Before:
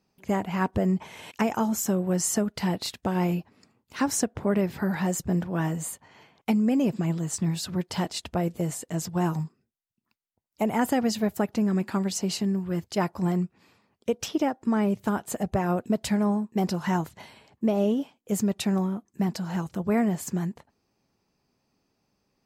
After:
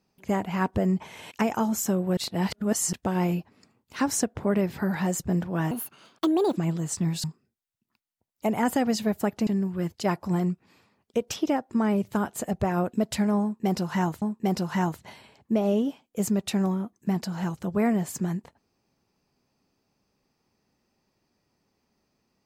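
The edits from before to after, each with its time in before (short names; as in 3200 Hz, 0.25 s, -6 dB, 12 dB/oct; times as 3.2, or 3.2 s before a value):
2.17–2.93 reverse
5.71–6.98 speed 148%
7.65–9.4 cut
11.63–12.39 cut
16.34–17.14 loop, 2 plays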